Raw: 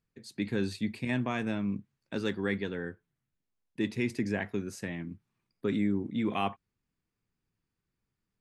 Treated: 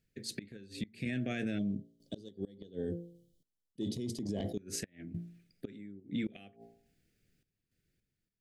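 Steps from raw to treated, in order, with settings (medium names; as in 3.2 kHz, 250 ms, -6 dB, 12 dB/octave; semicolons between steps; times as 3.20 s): Butterworth band-stop 1 kHz, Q 1.1; de-hum 57.2 Hz, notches 18; random-step tremolo 3.5 Hz, depth 90%; 3.82–4.53 s: transient shaper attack -1 dB, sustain +11 dB; 1.58–4.58 s: time-frequency box 1.2–2.9 kHz -21 dB; inverted gate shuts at -28 dBFS, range -28 dB; peak limiter -38.5 dBFS, peak gain reduction 12.5 dB; trim +11.5 dB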